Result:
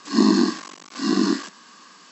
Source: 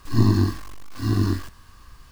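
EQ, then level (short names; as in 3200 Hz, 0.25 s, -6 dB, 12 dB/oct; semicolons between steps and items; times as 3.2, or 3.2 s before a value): brick-wall FIR band-pass 170–7900 Hz; high shelf 4900 Hz +7.5 dB; +5.5 dB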